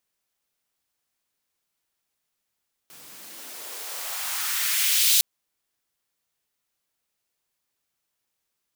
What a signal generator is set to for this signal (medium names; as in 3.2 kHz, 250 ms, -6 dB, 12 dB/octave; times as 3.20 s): swept filtered noise white, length 2.31 s highpass, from 130 Hz, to 3.8 kHz, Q 1.4, exponential, gain ramp +29.5 dB